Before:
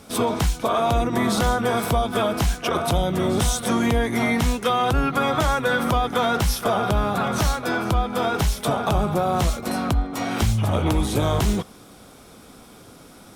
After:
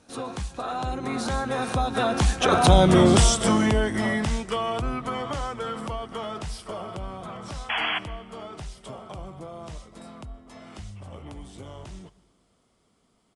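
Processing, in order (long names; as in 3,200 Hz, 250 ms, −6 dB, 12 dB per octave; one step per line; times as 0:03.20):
source passing by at 0:02.88, 30 m/s, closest 11 metres
sound drawn into the spectrogram noise, 0:07.69–0:07.99, 630–3,400 Hz −33 dBFS
on a send at −20 dB: convolution reverb, pre-delay 115 ms
on the sum: downsampling to 22,050 Hz
level +6.5 dB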